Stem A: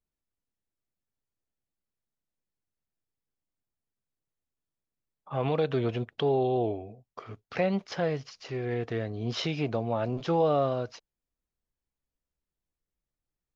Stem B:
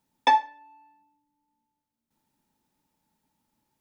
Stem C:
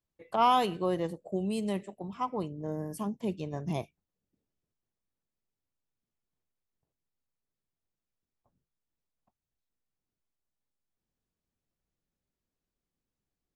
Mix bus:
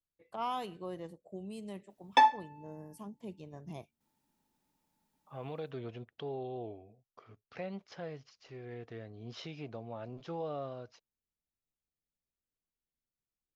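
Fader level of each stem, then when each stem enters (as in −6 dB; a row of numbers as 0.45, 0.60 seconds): −14.0, −3.0, −12.0 decibels; 0.00, 1.90, 0.00 seconds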